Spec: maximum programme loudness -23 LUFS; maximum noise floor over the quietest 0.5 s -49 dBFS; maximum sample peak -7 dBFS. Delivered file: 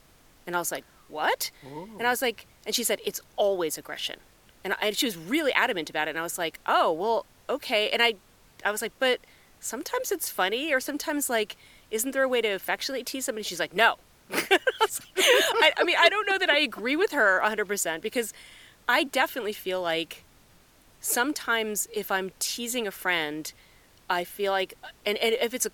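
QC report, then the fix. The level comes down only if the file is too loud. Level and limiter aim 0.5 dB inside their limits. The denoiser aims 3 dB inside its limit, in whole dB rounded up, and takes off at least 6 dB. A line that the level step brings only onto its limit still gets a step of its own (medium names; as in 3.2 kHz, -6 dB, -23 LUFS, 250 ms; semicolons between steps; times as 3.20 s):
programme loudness -26.0 LUFS: pass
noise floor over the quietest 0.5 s -58 dBFS: pass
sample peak -5.5 dBFS: fail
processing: peak limiter -7.5 dBFS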